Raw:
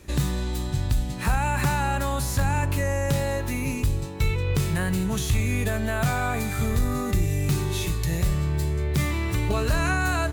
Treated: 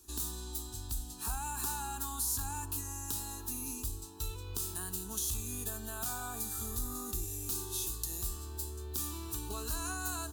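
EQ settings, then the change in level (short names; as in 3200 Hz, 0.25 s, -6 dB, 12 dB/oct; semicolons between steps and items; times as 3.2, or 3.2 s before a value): pre-emphasis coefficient 0.8; fixed phaser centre 560 Hz, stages 6; notch 2200 Hz, Q 20; 0.0 dB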